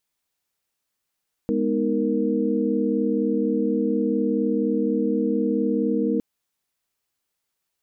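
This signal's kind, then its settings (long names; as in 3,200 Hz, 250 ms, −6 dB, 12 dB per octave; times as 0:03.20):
held notes G#3/B3/D#4/A#4 sine, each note −25 dBFS 4.71 s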